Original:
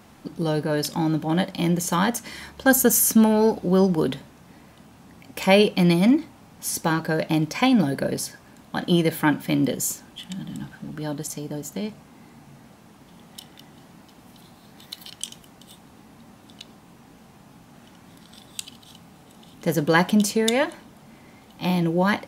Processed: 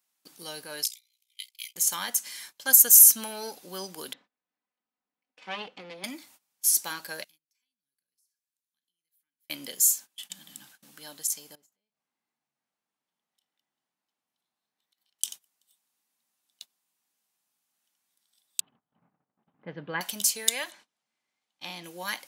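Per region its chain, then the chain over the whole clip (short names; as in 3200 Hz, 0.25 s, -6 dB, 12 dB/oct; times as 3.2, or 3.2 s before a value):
0.83–1.76 brick-wall FIR high-pass 2000 Hz + ring modulator 30 Hz
4.13–6.04 minimum comb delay 4 ms + HPF 98 Hz + tape spacing loss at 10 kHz 42 dB
7.24–9.5 passive tone stack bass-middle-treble 6-0-2 + compressor 8:1, threshold -52 dBFS
11.55–15.19 LPF 1400 Hz 6 dB/oct + compressor, threshold -44 dBFS
18.6–20.01 low-pass opened by the level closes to 1200 Hz, open at -15.5 dBFS + Gaussian blur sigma 3.7 samples + bell 140 Hz +11.5 dB 1.5 oct
20.71–21.84 LPF 8000 Hz + high shelf 5400 Hz -9 dB
whole clip: gate -40 dBFS, range -22 dB; differentiator; gain +4 dB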